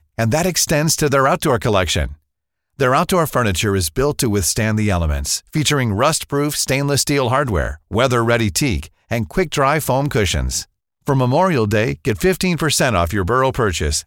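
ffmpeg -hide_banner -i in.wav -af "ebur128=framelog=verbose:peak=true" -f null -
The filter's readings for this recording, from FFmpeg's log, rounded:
Integrated loudness:
  I:         -17.2 LUFS
  Threshold: -27.4 LUFS
Loudness range:
  LRA:         1.2 LU
  Threshold: -37.6 LUFS
  LRA low:   -18.2 LUFS
  LRA high:  -17.0 LUFS
True peak:
  Peak:       -2.2 dBFS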